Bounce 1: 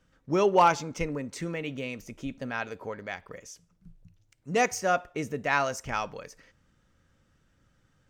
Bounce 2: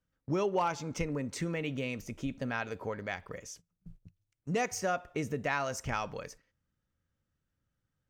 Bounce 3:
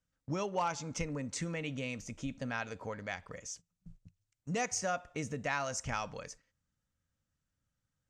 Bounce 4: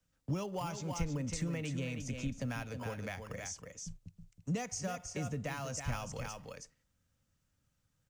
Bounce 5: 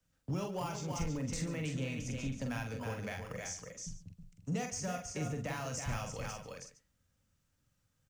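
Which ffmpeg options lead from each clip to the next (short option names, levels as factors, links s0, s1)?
-af "agate=range=0.126:threshold=0.00282:ratio=16:detection=peak,equalizer=f=88:w=0.71:g=4.5,acompressor=threshold=0.0316:ratio=3"
-af "lowpass=f=7500:t=q:w=2.1,equalizer=f=380:w=4.2:g=-8,volume=0.75"
-filter_complex "[0:a]aecho=1:1:321:0.376,acrossover=split=160[s0][s1];[s1]acompressor=threshold=0.00447:ratio=3[s2];[s0][s2]amix=inputs=2:normalize=0,acrossover=split=280|850|1500[s3][s4][s5][s6];[s5]acrusher=samples=11:mix=1:aa=0.000001[s7];[s3][s4][s7][s6]amix=inputs=4:normalize=0,volume=2"
-filter_complex "[0:a]asoftclip=type=tanh:threshold=0.0422,asplit=2[s0][s1];[s1]aecho=0:1:45|140:0.562|0.178[s2];[s0][s2]amix=inputs=2:normalize=0"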